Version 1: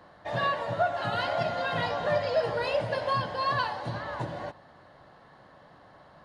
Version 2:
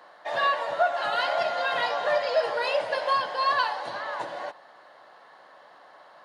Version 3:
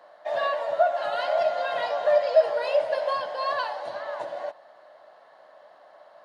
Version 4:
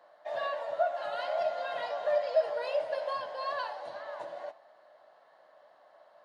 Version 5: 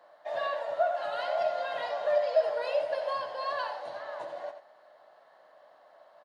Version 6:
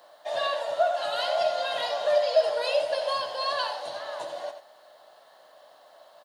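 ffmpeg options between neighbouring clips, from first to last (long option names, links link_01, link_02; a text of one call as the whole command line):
ffmpeg -i in.wav -af "highpass=560,volume=4.5dB" out.wav
ffmpeg -i in.wav -af "equalizer=frequency=620:width_type=o:width=0.41:gain=12.5,volume=-5.5dB" out.wav
ffmpeg -i in.wav -af "flanger=delay=5.7:depth=7.6:regen=85:speed=0.37:shape=triangular,volume=-3dB" out.wav
ffmpeg -i in.wav -af "aecho=1:1:88:0.316,volume=1.5dB" out.wav
ffmpeg -i in.wav -af "aexciter=amount=3.7:drive=4:freq=2900,volume=3.5dB" out.wav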